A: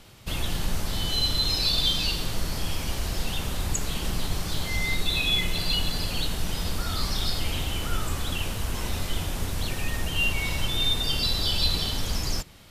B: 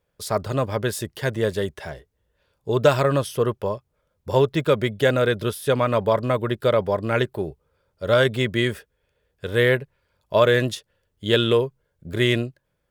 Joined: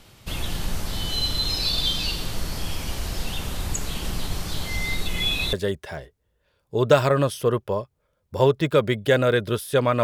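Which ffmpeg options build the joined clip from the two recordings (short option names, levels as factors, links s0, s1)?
-filter_complex "[0:a]apad=whole_dur=10.03,atrim=end=10.03,asplit=2[s0][s1];[s0]atrim=end=5.082[s2];[s1]atrim=start=5.078:end=5.532,asetpts=PTS-STARTPTS,areverse[s3];[1:a]atrim=start=1.468:end=5.97[s4];[s2][s3]acrossfade=d=0.004:c1=hsin:c2=hsin[s5];[s5][s4]acrossfade=d=0.004:c1=hsin:c2=hsin"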